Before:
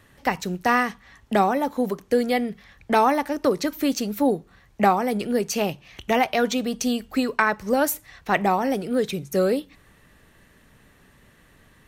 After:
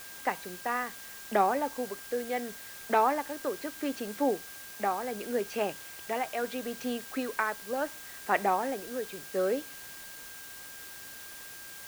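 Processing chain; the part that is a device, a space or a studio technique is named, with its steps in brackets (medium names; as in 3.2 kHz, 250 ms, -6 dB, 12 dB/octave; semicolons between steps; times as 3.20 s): shortwave radio (band-pass 330–2500 Hz; tremolo 0.72 Hz, depth 53%; whistle 1.6 kHz -46 dBFS; white noise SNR 13 dB); trim -4.5 dB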